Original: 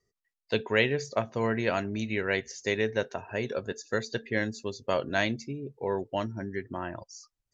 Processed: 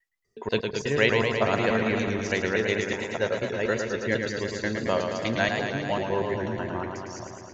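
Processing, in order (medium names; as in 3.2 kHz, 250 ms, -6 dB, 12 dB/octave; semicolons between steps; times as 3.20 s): slices played last to first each 122 ms, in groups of 3; modulated delay 110 ms, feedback 78%, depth 88 cents, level -5.5 dB; trim +2 dB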